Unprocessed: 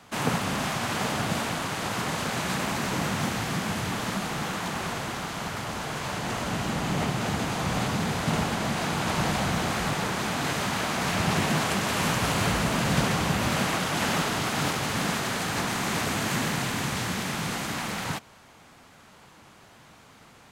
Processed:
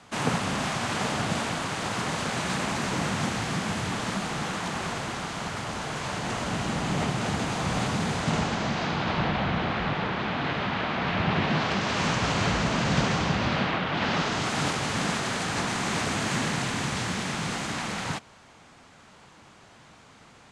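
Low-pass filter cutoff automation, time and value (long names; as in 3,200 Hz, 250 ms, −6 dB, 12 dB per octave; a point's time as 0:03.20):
low-pass filter 24 dB per octave
0:08.12 9,600 Hz
0:09.32 3,700 Hz
0:11.33 3,700 Hz
0:12.03 6,700 Hz
0:13.17 6,700 Hz
0:13.85 3,400 Hz
0:14.53 9,100 Hz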